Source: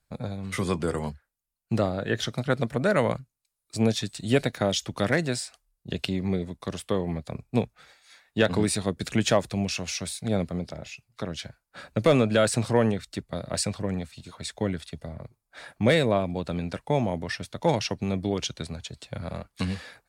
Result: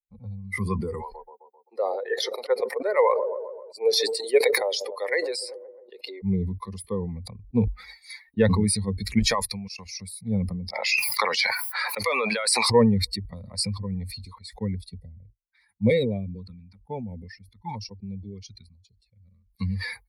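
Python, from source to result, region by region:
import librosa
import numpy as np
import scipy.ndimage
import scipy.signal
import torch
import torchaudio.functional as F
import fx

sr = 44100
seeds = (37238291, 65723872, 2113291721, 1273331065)

y = fx.chain(x, sr, fx.cheby2_highpass(hz=180.0, order=4, stop_db=40),
    fx.peak_eq(hz=590.0, db=4.0, octaves=1.3),
    fx.echo_wet_lowpass(ms=131, feedback_pct=75, hz=820.0, wet_db=-14.5), at=(1.01, 6.23))
y = fx.chain(y, sr, fx.low_shelf(hz=470.0, db=-11.5),
    fx.level_steps(step_db=16), at=(9.19, 9.86))
y = fx.chain(y, sr, fx.highpass(hz=780.0, slope=12),
    fx.high_shelf(hz=6800.0, db=-4.5),
    fx.env_flatten(amount_pct=100), at=(10.73, 12.7))
y = fx.chain(y, sr, fx.filter_lfo_notch(shape='saw_down', hz=1.0, low_hz=480.0, high_hz=1800.0, q=0.86),
    fx.upward_expand(threshold_db=-40.0, expansion=1.5), at=(14.75, 19.5))
y = fx.bin_expand(y, sr, power=2.0)
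y = fx.ripple_eq(y, sr, per_octave=0.9, db=15)
y = fx.sustainer(y, sr, db_per_s=40.0)
y = y * librosa.db_to_amplitude(1.0)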